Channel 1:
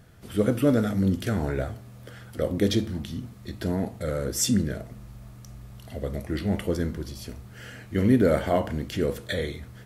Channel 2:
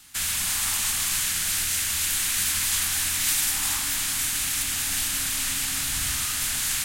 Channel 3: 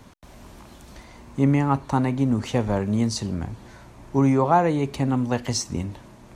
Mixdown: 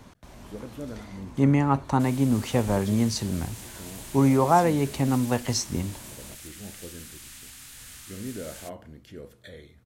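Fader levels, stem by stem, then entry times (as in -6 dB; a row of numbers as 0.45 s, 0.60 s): -16.5 dB, -18.5 dB, -1.0 dB; 0.15 s, 1.85 s, 0.00 s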